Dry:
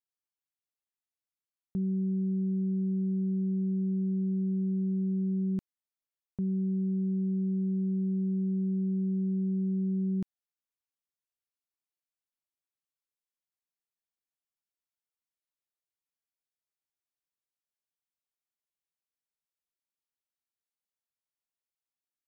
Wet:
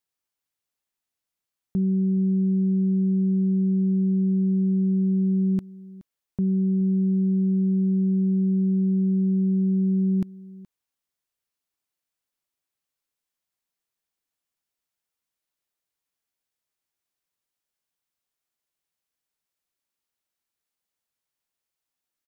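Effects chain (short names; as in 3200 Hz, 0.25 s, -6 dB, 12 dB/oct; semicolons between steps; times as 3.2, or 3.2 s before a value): echo 0.422 s -20 dB; gain +7.5 dB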